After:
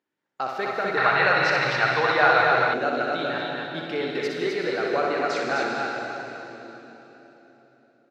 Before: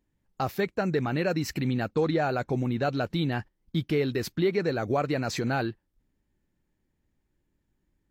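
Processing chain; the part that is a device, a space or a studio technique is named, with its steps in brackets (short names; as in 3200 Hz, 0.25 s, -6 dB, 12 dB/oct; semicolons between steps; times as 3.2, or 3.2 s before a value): station announcement (BPF 410–5000 Hz; bell 1400 Hz +6 dB 0.33 oct; loudspeakers at several distances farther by 21 m -5 dB, 88 m -4 dB; reverb RT60 3.7 s, pre-delay 76 ms, DRR 0.5 dB); 0.97–2.74 graphic EQ 125/250/1000/2000/4000/8000 Hz +12/-11/+10/+7/+8/-5 dB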